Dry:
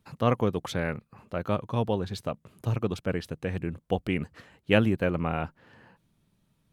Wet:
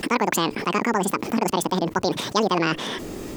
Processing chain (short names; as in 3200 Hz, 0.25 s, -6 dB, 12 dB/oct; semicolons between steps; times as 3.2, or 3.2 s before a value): speed mistake 7.5 ips tape played at 15 ips; fast leveller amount 70%